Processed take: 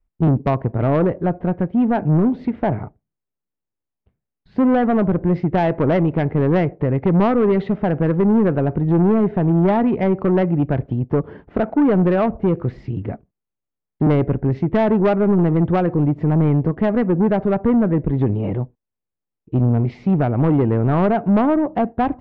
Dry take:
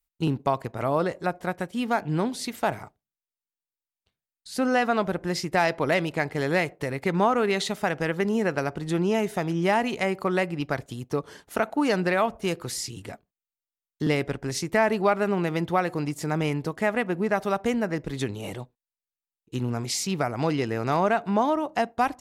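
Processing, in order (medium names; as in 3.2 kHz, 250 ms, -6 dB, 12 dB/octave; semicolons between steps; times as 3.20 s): low-pass 2.5 kHz 24 dB/octave; tilt shelf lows +10 dB, about 720 Hz; saturation -17.5 dBFS, distortion -12 dB; trim +7 dB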